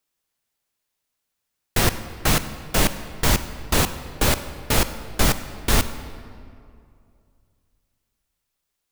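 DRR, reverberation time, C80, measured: 11.0 dB, 2.4 s, 12.5 dB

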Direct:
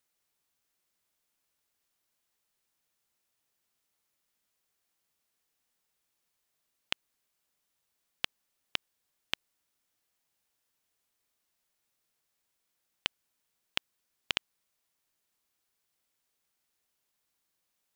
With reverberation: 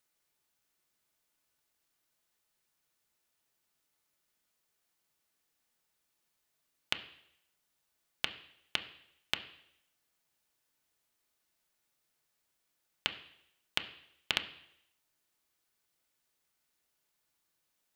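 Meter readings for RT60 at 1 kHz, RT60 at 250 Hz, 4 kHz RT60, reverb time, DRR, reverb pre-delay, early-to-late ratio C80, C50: 0.75 s, 0.75 s, 0.75 s, 0.75 s, 6.0 dB, 3 ms, 15.5 dB, 13.0 dB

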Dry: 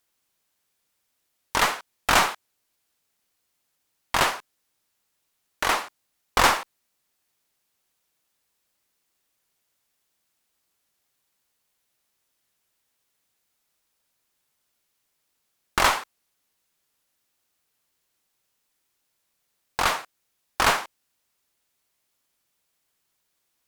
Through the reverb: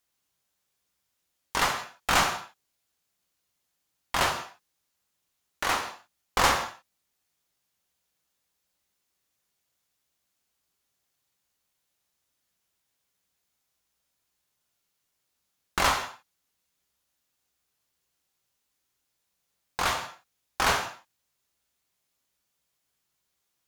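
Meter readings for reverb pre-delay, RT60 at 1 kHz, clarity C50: 3 ms, no reading, 9.0 dB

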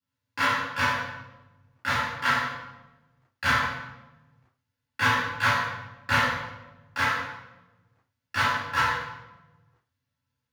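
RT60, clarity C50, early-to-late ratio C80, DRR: 1.1 s, -1.0 dB, 2.0 dB, -10.5 dB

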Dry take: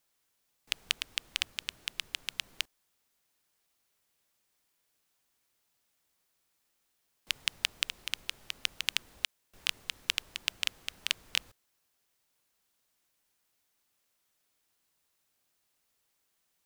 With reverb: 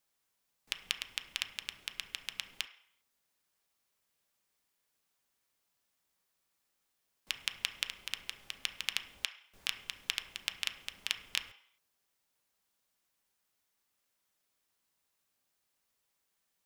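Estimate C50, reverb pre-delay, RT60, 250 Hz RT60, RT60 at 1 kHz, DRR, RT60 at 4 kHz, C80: 12.0 dB, 3 ms, 0.65 s, 0.50 s, 0.70 s, 6.5 dB, 0.60 s, 15.5 dB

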